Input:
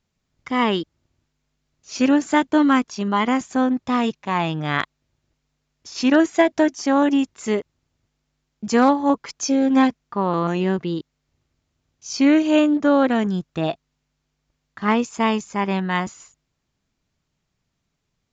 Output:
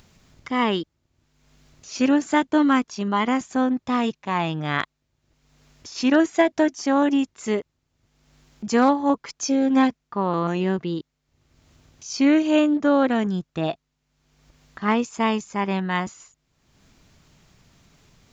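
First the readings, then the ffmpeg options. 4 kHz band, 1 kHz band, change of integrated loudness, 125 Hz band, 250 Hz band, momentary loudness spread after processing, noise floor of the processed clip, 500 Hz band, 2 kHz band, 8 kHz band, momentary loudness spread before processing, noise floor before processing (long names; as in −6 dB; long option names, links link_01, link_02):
−2.0 dB, −2.0 dB, −2.0 dB, −2.0 dB, −2.0 dB, 10 LU, −76 dBFS, −2.0 dB, −2.0 dB, can't be measured, 10 LU, −76 dBFS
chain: -af "acompressor=mode=upward:threshold=-36dB:ratio=2.5,volume=-2dB"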